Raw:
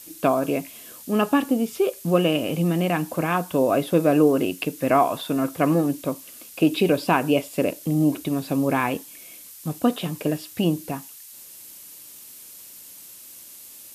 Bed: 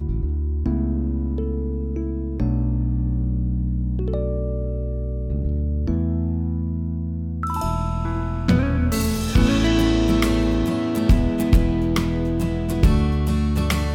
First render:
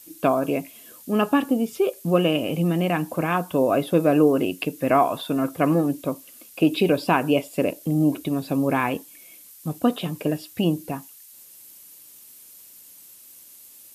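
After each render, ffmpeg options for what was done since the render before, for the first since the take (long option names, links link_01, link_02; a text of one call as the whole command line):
ffmpeg -i in.wav -af "afftdn=noise_reduction=6:noise_floor=-44" out.wav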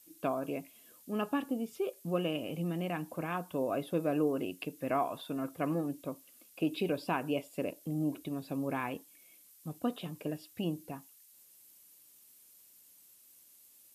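ffmpeg -i in.wav -af "volume=-13dB" out.wav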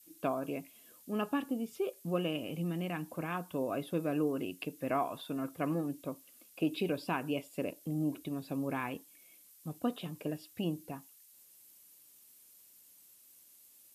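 ffmpeg -i in.wav -af "adynamicequalizer=threshold=0.00501:dfrequency=630:dqfactor=1.1:tfrequency=630:tqfactor=1.1:attack=5:release=100:ratio=0.375:range=2.5:mode=cutabove:tftype=bell" out.wav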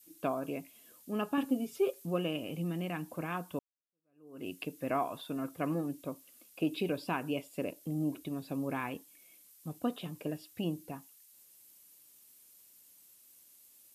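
ffmpeg -i in.wav -filter_complex "[0:a]asettb=1/sr,asplit=3[link_01][link_02][link_03];[link_01]atrim=end=1.374[link_04];[link_02]atrim=start=1.37:end=2.06,asetpts=PTS-STARTPTS,afade=type=in:duration=0.004:curve=qsin,afade=type=out:start_time=0.686:duration=0.004:curve=qsin,aecho=1:1:7.4:0.98,atrim=end_sample=30429[link_05];[link_03]atrim=start=2.056[link_06];[link_04][link_05]acrossfade=duration=0.004:curve1=hsin:curve2=qsin[link_07];[link_07][link_06]acrossfade=duration=0.004:curve1=qsin:curve2=hsin,asplit=2[link_08][link_09];[link_08]atrim=end=3.59,asetpts=PTS-STARTPTS,afade=type=out:start_time=3.586:duration=0.004:curve=hsin[link_10];[link_09]atrim=start=3.59,asetpts=PTS-STARTPTS,afade=type=in:duration=0.88:curve=exp[link_11];[link_10][link_11]concat=n=2:v=0:a=1" out.wav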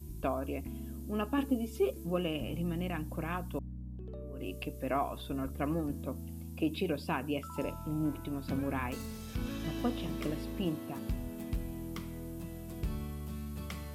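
ffmpeg -i in.wav -i bed.wav -filter_complex "[1:a]volume=-20.5dB[link_01];[0:a][link_01]amix=inputs=2:normalize=0" out.wav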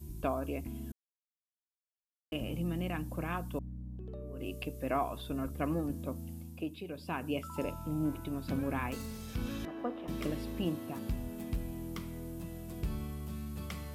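ffmpeg -i in.wav -filter_complex "[0:a]asettb=1/sr,asplit=3[link_01][link_02][link_03];[link_01]atrim=end=9.654[link_04];[link_02]atrim=start=9.65:end=10.08,asetpts=PTS-STARTPTS,afade=type=in:duration=0.004:curve=qsin,afade=type=out:start_time=0.426:duration=0.004:curve=qsin,acrossover=split=270 2000:gain=0.0708 1 0.0794[link_05][link_06][link_07];[link_05][link_06][link_07]amix=inputs=3:normalize=0[link_08];[link_03]atrim=start=10.076[link_09];[link_04][link_08]acrossfade=duration=0.004:curve1=hsin:curve2=qsin[link_10];[link_10][link_09]acrossfade=duration=0.004:curve1=qsin:curve2=hsin,asplit=5[link_11][link_12][link_13][link_14][link_15];[link_11]atrim=end=0.92,asetpts=PTS-STARTPTS,afade=type=out:start_time=0.916:duration=0.004:curve=hsin[link_16];[link_12]atrim=start=0.92:end=2.32,asetpts=PTS-STARTPTS,volume=0[link_17];[link_13]atrim=start=2.32:end=6.76,asetpts=PTS-STARTPTS,afade=type=in:duration=0.004:curve=hsin,afade=type=out:start_time=3.99:duration=0.45:silence=0.316228[link_18];[link_14]atrim=start=6.76:end=6.89,asetpts=PTS-STARTPTS,volume=-10dB[link_19];[link_15]atrim=start=6.89,asetpts=PTS-STARTPTS,afade=type=in:duration=0.45:silence=0.316228[link_20];[link_16][link_17][link_18][link_19][link_20]concat=n=5:v=0:a=1" out.wav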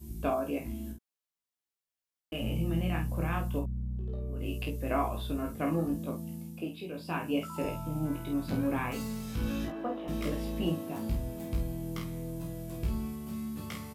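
ffmpeg -i in.wav -filter_complex "[0:a]asplit=2[link_01][link_02];[link_02]adelay=18,volume=-3.5dB[link_03];[link_01][link_03]amix=inputs=2:normalize=0,aecho=1:1:32|49:0.447|0.447" out.wav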